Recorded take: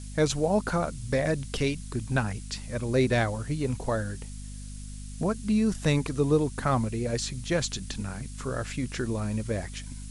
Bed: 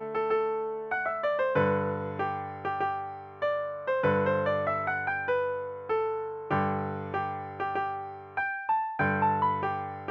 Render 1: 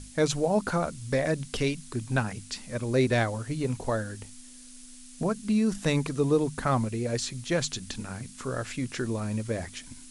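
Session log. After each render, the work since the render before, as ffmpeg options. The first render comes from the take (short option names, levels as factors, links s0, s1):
-af "bandreject=f=50:t=h:w=6,bandreject=f=100:t=h:w=6,bandreject=f=150:t=h:w=6,bandreject=f=200:t=h:w=6"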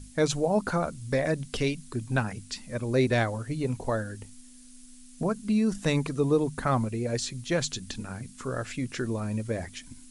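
-af "afftdn=nr=6:nf=-48"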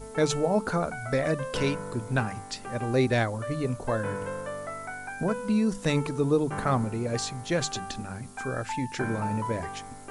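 -filter_complex "[1:a]volume=0.398[s0];[0:a][s0]amix=inputs=2:normalize=0"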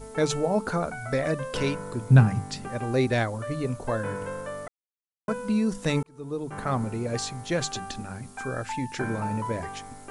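-filter_complex "[0:a]asettb=1/sr,asplit=3[s0][s1][s2];[s0]atrim=end=2.104[s3];[s1]atrim=start=2.1:end=2.68,asetpts=PTS-STARTPTS,afade=t=in:d=0.004:c=qsin,afade=t=out:st=0.576:d=0.004:c=qsin,equalizer=f=140:w=0.84:g=15[s4];[s2]atrim=start=2.676[s5];[s3][s4]acrossfade=d=0.004:c1=hsin:c2=qsin[s6];[s6][s5]acrossfade=d=0.004:c1=qsin:c2=hsin,asplit=4[s7][s8][s9][s10];[s7]atrim=end=4.68,asetpts=PTS-STARTPTS,afade=t=out:st=4.676:d=0.004:c=hsin[s11];[s8]atrim=start=4.68:end=5.28,asetpts=PTS-STARTPTS,volume=0[s12];[s9]atrim=start=5.28:end=6.03,asetpts=PTS-STARTPTS,afade=t=in:d=0.004:c=hsin,afade=t=out:st=0.746:d=0.004:c=hsin[s13];[s10]atrim=start=6.03,asetpts=PTS-STARTPTS,afade=t=in:d=0.86[s14];[s11][s12][s13][s14]concat=n=4:v=0:a=1"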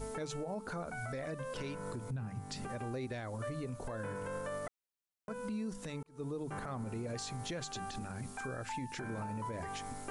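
-af "acompressor=threshold=0.0178:ratio=6,alimiter=level_in=2.51:limit=0.0631:level=0:latency=1:release=49,volume=0.398"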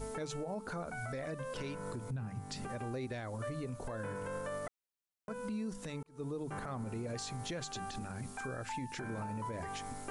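-af anull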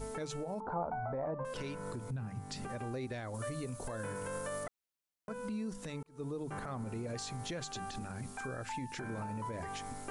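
-filter_complex "[0:a]asettb=1/sr,asplit=3[s0][s1][s2];[s0]atrim=end=0.604[s3];[s1]atrim=start=0.6:end=1.45,asetpts=PTS-STARTPTS,afade=t=in:d=0.004:c=qsin,afade=t=out:st=0.846:d=0.004:c=qsin,lowpass=f=890:t=q:w=5.2[s4];[s2]atrim=start=1.446[s5];[s3][s4]acrossfade=d=0.004:c1=hsin:c2=qsin[s6];[s6][s5]acrossfade=d=0.004:c1=qsin:c2=hsin,asettb=1/sr,asplit=3[s7][s8][s9];[s7]atrim=end=3.344[s10];[s8]atrim=start=3.34:end=4.64,asetpts=PTS-STARTPTS,afade=t=in:d=0.004:c=qsin,afade=t=out:st=1.296:d=0.004:c=qsin,highshelf=f=5400:g=11.5[s11];[s9]atrim=start=4.636[s12];[s10][s11]acrossfade=d=0.004:c1=hsin:c2=qsin[s13];[s13][s12]acrossfade=d=0.004:c1=qsin:c2=hsin"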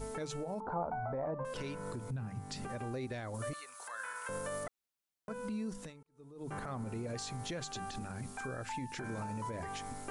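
-filter_complex "[0:a]asettb=1/sr,asplit=3[s0][s1][s2];[s0]atrim=end=3.534[s3];[s1]atrim=start=3.53:end=4.29,asetpts=PTS-STARTPTS,afade=t=in:d=0.004:c=qsin,afade=t=out:st=0.756:d=0.004:c=qsin,highpass=f=1300:t=q:w=2[s4];[s2]atrim=start=4.286[s5];[s3][s4]acrossfade=d=0.004:c1=hsin:c2=qsin[s6];[s6][s5]acrossfade=d=0.004:c1=qsin:c2=hsin,asettb=1/sr,asplit=3[s7][s8][s9];[s7]atrim=end=9.044[s10];[s8]atrim=start=9.04:end=9.5,asetpts=PTS-STARTPTS,afade=t=in:d=0.004:c=qsin,afade=t=out:st=0.456:d=0.004:c=qsin,equalizer=f=6200:w=0.89:g=6[s11];[s9]atrim=start=9.496[s12];[s10][s11]acrossfade=d=0.004:c1=hsin:c2=qsin[s13];[s13][s12]acrossfade=d=0.004:c1=qsin:c2=hsin,asplit=3[s14][s15][s16];[s14]atrim=end=5.94,asetpts=PTS-STARTPTS,afade=t=out:st=5.81:d=0.13:silence=0.188365[s17];[s15]atrim=start=5.94:end=6.35,asetpts=PTS-STARTPTS,volume=0.188[s18];[s16]atrim=start=6.35,asetpts=PTS-STARTPTS,afade=t=in:d=0.13:silence=0.188365[s19];[s17][s18][s19]concat=n=3:v=0:a=1"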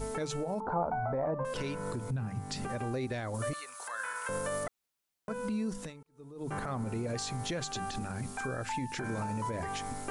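-af "volume=1.78"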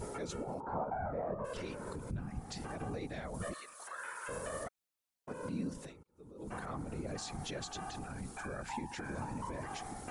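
-af "afftfilt=real='hypot(re,im)*cos(2*PI*random(0))':imag='hypot(re,im)*sin(2*PI*random(1))':win_size=512:overlap=0.75"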